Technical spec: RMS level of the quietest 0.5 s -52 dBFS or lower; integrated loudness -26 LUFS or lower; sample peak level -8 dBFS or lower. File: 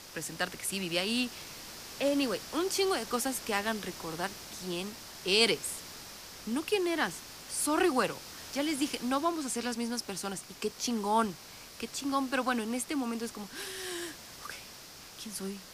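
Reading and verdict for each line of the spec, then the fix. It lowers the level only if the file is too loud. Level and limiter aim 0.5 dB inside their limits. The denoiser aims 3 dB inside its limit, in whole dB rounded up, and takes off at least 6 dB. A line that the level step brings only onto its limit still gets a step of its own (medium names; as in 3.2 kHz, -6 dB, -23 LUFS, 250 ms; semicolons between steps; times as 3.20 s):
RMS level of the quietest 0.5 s -49 dBFS: fail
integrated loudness -32.5 LUFS: pass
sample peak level -12.0 dBFS: pass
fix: noise reduction 6 dB, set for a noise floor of -49 dBFS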